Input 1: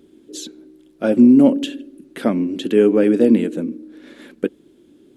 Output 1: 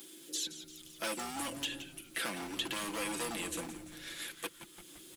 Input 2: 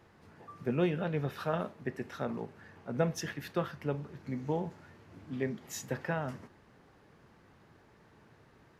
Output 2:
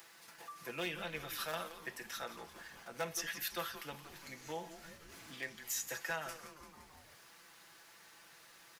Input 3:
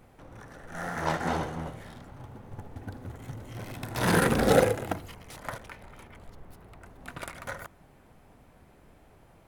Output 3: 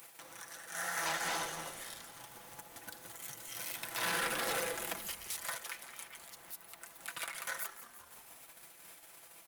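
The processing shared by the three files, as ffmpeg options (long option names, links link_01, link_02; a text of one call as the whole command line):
ffmpeg -i in.wav -filter_complex "[0:a]acrossover=split=180|2800[link_01][link_02][link_03];[link_01]acompressor=threshold=-31dB:ratio=4[link_04];[link_02]acompressor=threshold=-23dB:ratio=4[link_05];[link_03]acompressor=threshold=-44dB:ratio=4[link_06];[link_04][link_05][link_06]amix=inputs=3:normalize=0,acrossover=split=3700[link_07][link_08];[link_07]volume=23.5dB,asoftclip=hard,volume=-23.5dB[link_09];[link_08]alimiter=level_in=16.5dB:limit=-24dB:level=0:latency=1:release=123,volume=-16.5dB[link_10];[link_09][link_10]amix=inputs=2:normalize=0,agate=range=-10dB:threshold=-55dB:ratio=16:detection=peak,aderivative,bandreject=frequency=420:width=12,aecho=1:1:6:0.51,asplit=6[link_11][link_12][link_13][link_14][link_15][link_16];[link_12]adelay=172,afreqshift=-150,volume=-13dB[link_17];[link_13]adelay=344,afreqshift=-300,volume=-19.2dB[link_18];[link_14]adelay=516,afreqshift=-450,volume=-25.4dB[link_19];[link_15]adelay=688,afreqshift=-600,volume=-31.6dB[link_20];[link_16]adelay=860,afreqshift=-750,volume=-37.8dB[link_21];[link_11][link_17][link_18][link_19][link_20][link_21]amix=inputs=6:normalize=0,acompressor=mode=upward:threshold=-57dB:ratio=2.5,asoftclip=type=tanh:threshold=-37dB,volume=11.5dB" out.wav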